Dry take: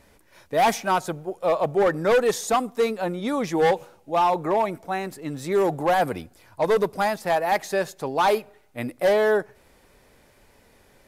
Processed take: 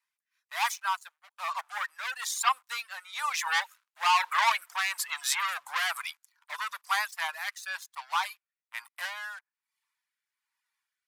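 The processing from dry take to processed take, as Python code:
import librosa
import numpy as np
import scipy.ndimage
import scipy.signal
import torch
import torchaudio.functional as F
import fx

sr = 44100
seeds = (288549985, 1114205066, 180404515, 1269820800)

y = fx.doppler_pass(x, sr, speed_mps=10, closest_m=5.6, pass_at_s=4.9)
y = fx.leveller(y, sr, passes=3)
y = scipy.signal.sosfilt(scipy.signal.ellip(4, 1.0, 60, 1000.0, 'highpass', fs=sr, output='sos'), y)
y = fx.dereverb_blind(y, sr, rt60_s=0.52)
y = fx.rotary(y, sr, hz=1.1)
y = y * 10.0 ** (5.5 / 20.0)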